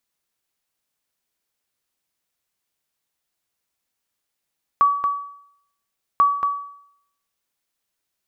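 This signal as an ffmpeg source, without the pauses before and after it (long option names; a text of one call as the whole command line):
ffmpeg -f lavfi -i "aevalsrc='0.355*(sin(2*PI*1140*mod(t,1.39))*exp(-6.91*mod(t,1.39)/0.69)+0.473*sin(2*PI*1140*max(mod(t,1.39)-0.23,0))*exp(-6.91*max(mod(t,1.39)-0.23,0)/0.69))':duration=2.78:sample_rate=44100" out.wav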